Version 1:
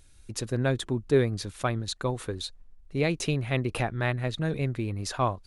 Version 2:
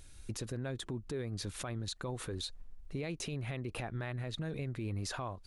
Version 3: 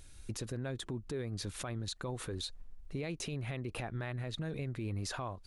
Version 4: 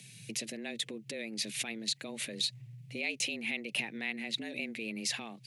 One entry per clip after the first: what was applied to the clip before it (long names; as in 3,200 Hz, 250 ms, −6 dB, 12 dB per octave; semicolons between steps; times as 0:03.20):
downward compressor 12 to 1, threshold −34 dBFS, peak gain reduction 17.5 dB; brickwall limiter −32.5 dBFS, peak gain reduction 11 dB; level +2.5 dB
no processing that can be heard
high shelf with overshoot 1,600 Hz +10.5 dB, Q 3; frequency shifter +110 Hz; level −3.5 dB